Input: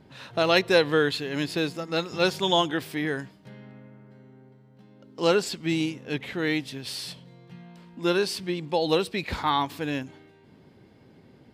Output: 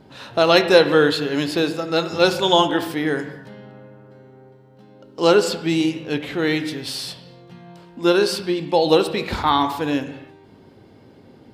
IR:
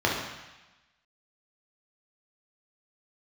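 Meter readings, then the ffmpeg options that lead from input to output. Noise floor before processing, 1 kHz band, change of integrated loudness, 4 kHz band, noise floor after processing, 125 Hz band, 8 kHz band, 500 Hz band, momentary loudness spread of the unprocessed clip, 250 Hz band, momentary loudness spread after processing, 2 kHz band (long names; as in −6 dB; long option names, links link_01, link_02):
−55 dBFS, +7.5 dB, +7.0 dB, +6.0 dB, −49 dBFS, +4.5 dB, +5.5 dB, +8.0 dB, 12 LU, +7.0 dB, 12 LU, +5.0 dB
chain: -filter_complex "[0:a]asplit=2[link_01][link_02];[1:a]atrim=start_sample=2205,afade=type=out:start_time=0.31:duration=0.01,atrim=end_sample=14112,asetrate=36162,aresample=44100[link_03];[link_02][link_03]afir=irnorm=-1:irlink=0,volume=-22dB[link_04];[link_01][link_04]amix=inputs=2:normalize=0,volume=5dB"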